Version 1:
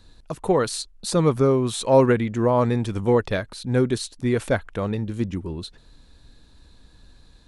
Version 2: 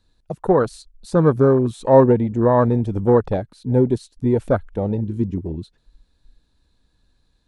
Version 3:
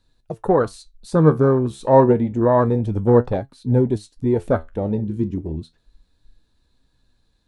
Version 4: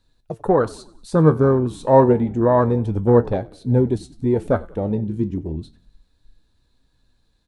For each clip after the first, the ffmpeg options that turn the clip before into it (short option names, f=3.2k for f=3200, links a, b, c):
-af "afwtdn=0.0631,volume=4dB"
-af "flanger=delay=7.2:depth=7.7:regen=65:speed=0.29:shape=triangular,volume=4dB"
-filter_complex "[0:a]asplit=5[a][b][c][d][e];[b]adelay=93,afreqshift=-43,volume=-22dB[f];[c]adelay=186,afreqshift=-86,volume=-27.7dB[g];[d]adelay=279,afreqshift=-129,volume=-33.4dB[h];[e]adelay=372,afreqshift=-172,volume=-39dB[i];[a][f][g][h][i]amix=inputs=5:normalize=0"